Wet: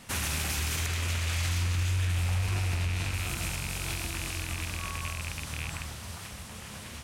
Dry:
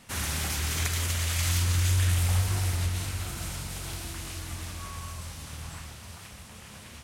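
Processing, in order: rattle on loud lows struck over -37 dBFS, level -25 dBFS; 0.86–3.14 s: treble shelf 7.7 kHz -10 dB; peak limiter -24.5 dBFS, peak gain reduction 9.5 dB; trim +3.5 dB

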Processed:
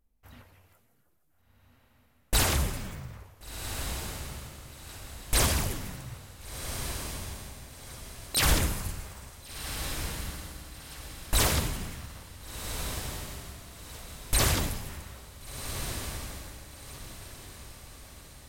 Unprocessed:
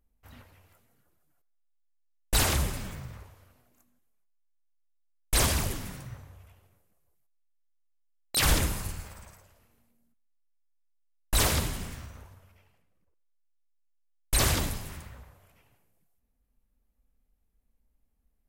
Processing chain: echo that smears into a reverb 1463 ms, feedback 42%, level -7.5 dB

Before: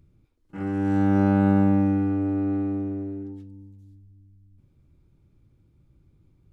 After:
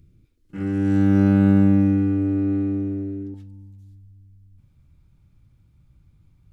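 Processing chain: peaking EQ 840 Hz -12.5 dB 1.3 oct, from 3.34 s 380 Hz; trim +5 dB

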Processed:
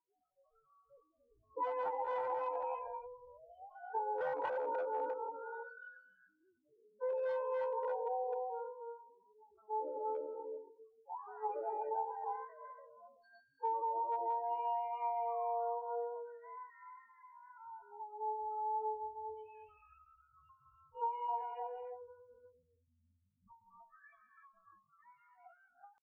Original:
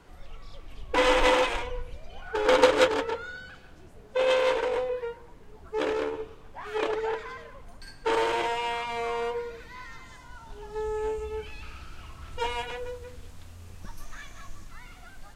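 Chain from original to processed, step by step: loudest bins only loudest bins 8; reverberation, pre-delay 19 ms, DRR 4.5 dB; wavefolder -20 dBFS; band-pass filter 810 Hz, Q 5.8; compression 12:1, threshold -38 dBFS, peak gain reduction 7 dB; tempo 0.59×; spectral noise reduction 22 dB; endings held to a fixed fall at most 160 dB/s; trim +5 dB

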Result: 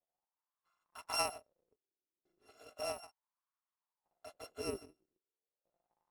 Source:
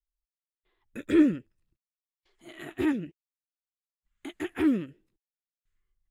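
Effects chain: bit-reversed sample order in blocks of 256 samples; wah-wah 0.35 Hz 350–1100 Hz, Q 5.4; trim +16 dB

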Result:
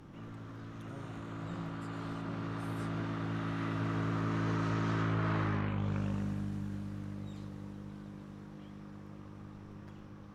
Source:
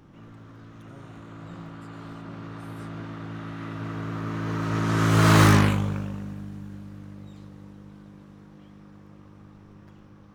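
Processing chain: low-pass that closes with the level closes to 2.4 kHz, closed at -16.5 dBFS; compression 16:1, threshold -29 dBFS, peak gain reduction 17.5 dB

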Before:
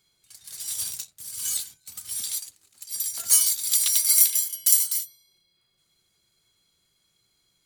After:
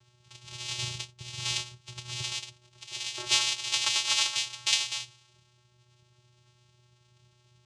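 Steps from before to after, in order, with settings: 2.85–4.35 s: tone controls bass -13 dB, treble -1 dB; vocoder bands 4, square 122 Hz

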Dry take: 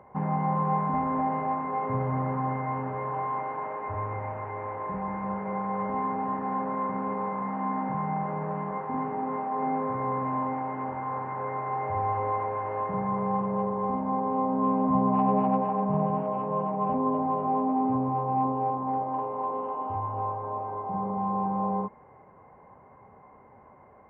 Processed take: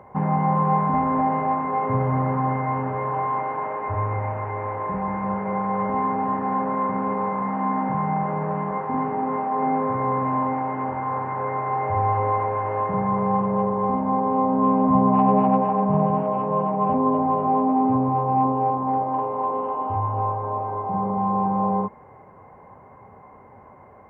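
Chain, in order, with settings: peaking EQ 100 Hz +4.5 dB 0.28 oct; trim +6 dB

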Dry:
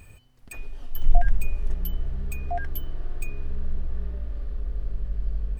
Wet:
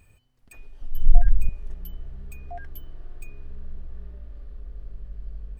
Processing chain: 0.81–1.49 s: bass shelf 180 Hz +12 dB; trim -8.5 dB

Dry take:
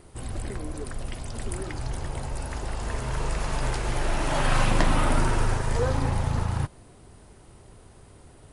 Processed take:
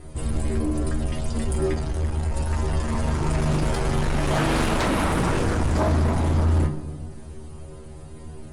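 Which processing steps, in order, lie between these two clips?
bass shelf 360 Hz +9 dB; inharmonic resonator 75 Hz, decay 0.35 s, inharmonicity 0.002; 1.73–2.31 s: valve stage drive 30 dB, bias 0.5; sine folder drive 12 dB, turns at -15 dBFS; on a send: reverberation RT60 1.4 s, pre-delay 3 ms, DRR 9 dB; on the sum: trim -3.5 dB

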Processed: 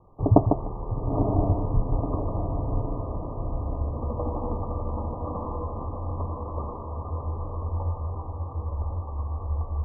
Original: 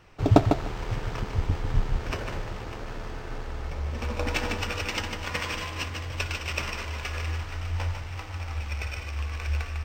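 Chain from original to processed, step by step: Chebyshev low-pass 1.2 kHz, order 10; on a send: echo that smears into a reverb 962 ms, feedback 56%, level -4 dB; on the sum: trim +1 dB

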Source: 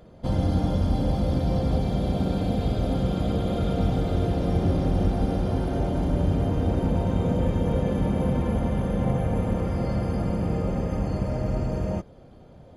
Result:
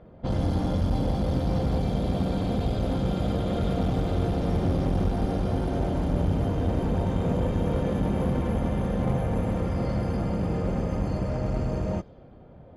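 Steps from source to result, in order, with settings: one-sided clip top -24.5 dBFS; level-controlled noise filter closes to 2 kHz, open at -21.5 dBFS

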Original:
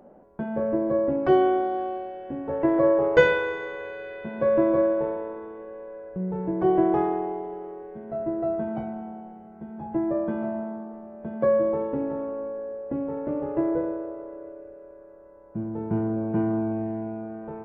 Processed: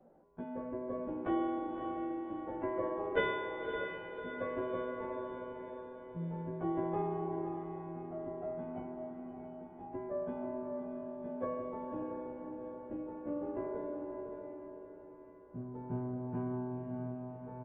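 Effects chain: short-time spectra conjugated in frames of 34 ms; resampled via 8 kHz; echo that smears into a reverb 584 ms, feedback 49%, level -5.5 dB; trim -8.5 dB

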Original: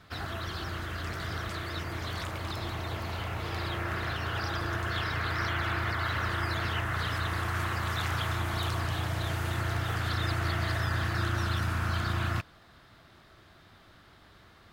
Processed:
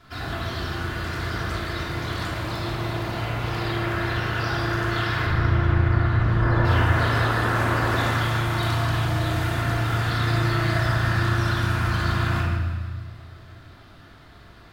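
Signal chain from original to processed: 5.26–6.65 s: tilt EQ -3.5 dB/octave; peak limiter -20 dBFS, peak gain reduction 7.5 dB; 6.39–8.06 s: painted sound noise 200–1800 Hz -34 dBFS; thinning echo 158 ms, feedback 52%, level -11.5 dB; simulated room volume 1100 m³, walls mixed, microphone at 3.1 m

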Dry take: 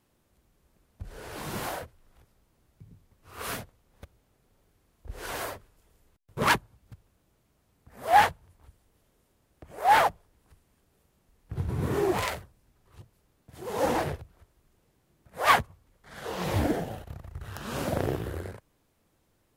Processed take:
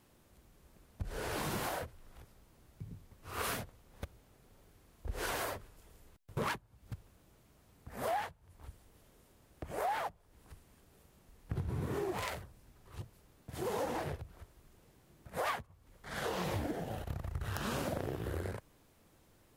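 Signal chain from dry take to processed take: compression 12:1, threshold -38 dBFS, peak gain reduction 24 dB; trim +4.5 dB

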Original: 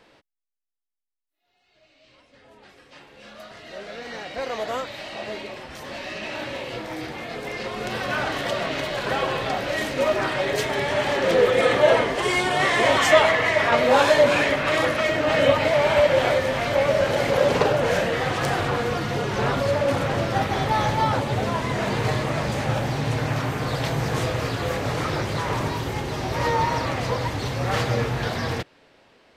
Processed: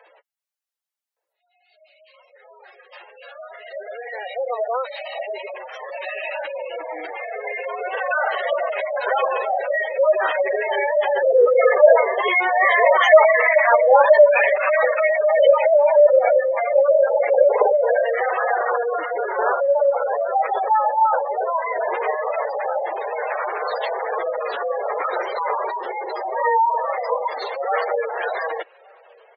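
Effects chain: high-pass 460 Hz 24 dB/octave; spectral gate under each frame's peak -10 dB strong; echo from a far wall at 200 m, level -28 dB; trim +7 dB

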